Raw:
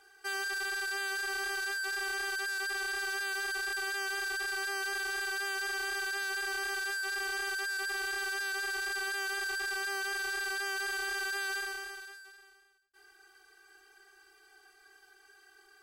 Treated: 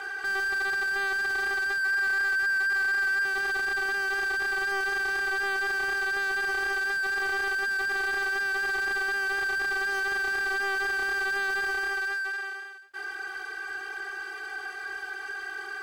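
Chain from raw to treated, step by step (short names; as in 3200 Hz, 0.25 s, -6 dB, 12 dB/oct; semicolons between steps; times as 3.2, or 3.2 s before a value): bell 1600 Hz +5 dB 0.82 oct, from 1.83 s +13.5 dB, from 3.25 s +3.5 dB; overdrive pedal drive 35 dB, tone 1400 Hz, clips at -18 dBFS; gain -1.5 dB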